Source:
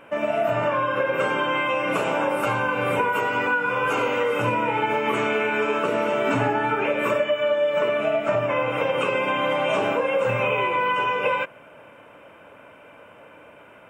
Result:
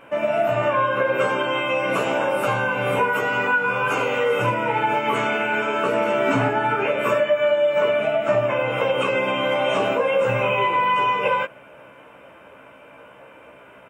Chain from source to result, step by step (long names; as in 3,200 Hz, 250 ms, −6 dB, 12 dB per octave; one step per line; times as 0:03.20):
double-tracking delay 15 ms −3.5 dB